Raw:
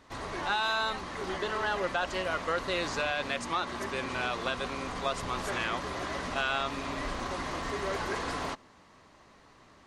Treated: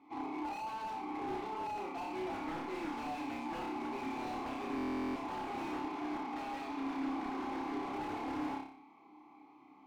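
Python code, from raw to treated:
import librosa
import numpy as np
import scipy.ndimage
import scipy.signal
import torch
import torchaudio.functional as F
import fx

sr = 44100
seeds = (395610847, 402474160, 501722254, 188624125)

y = fx.vowel_filter(x, sr, vowel='u')
y = fx.peak_eq(y, sr, hz=820.0, db=10.5, octaves=1.0)
y = fx.notch_comb(y, sr, f0_hz=940.0)
y = fx.rider(y, sr, range_db=5, speed_s=0.5)
y = 10.0 ** (-38.5 / 20.0) * (np.abs((y / 10.0 ** (-38.5 / 20.0) + 3.0) % 4.0 - 2.0) - 1.0)
y = fx.cheby1_bandpass(y, sr, low_hz=180.0, high_hz=6500.0, order=5, at=(5.67, 7.89))
y = fx.room_flutter(y, sr, wall_m=5.1, rt60_s=0.53)
y = fx.rev_schroeder(y, sr, rt60_s=0.4, comb_ms=33, drr_db=15.5)
y = fx.buffer_glitch(y, sr, at_s=(4.76,), block=1024, repeats=16)
y = fx.slew_limit(y, sr, full_power_hz=7.5)
y = y * librosa.db_to_amplitude(3.5)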